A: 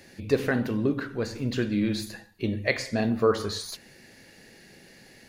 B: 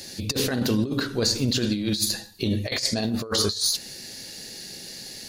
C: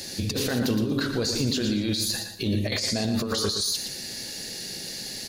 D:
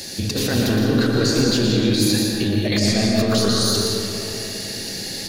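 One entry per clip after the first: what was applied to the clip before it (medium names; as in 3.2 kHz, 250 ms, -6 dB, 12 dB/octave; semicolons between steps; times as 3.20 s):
resonant high shelf 3 kHz +11 dB, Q 1.5; compressor with a negative ratio -27 dBFS, ratio -0.5; trim +3.5 dB
peak limiter -20.5 dBFS, peak gain reduction 10.5 dB; on a send: feedback delay 117 ms, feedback 23%, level -8 dB; on the sum: trim +3 dB
reverberation RT60 3.1 s, pre-delay 120 ms, DRR -1.5 dB; trim +4 dB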